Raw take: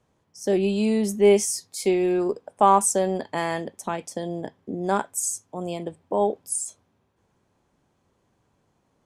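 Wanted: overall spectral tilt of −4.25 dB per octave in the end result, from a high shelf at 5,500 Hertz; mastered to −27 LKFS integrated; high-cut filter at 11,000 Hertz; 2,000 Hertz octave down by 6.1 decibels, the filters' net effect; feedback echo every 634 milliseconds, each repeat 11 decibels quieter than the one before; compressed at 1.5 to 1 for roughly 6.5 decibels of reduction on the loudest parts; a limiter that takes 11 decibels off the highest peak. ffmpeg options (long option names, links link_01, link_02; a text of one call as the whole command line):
ffmpeg -i in.wav -af "lowpass=11000,equalizer=frequency=2000:width_type=o:gain=-9,highshelf=frequency=5500:gain=8.5,acompressor=threshold=-30dB:ratio=1.5,alimiter=limit=-22.5dB:level=0:latency=1,aecho=1:1:634|1268|1902:0.282|0.0789|0.0221,volume=5dB" out.wav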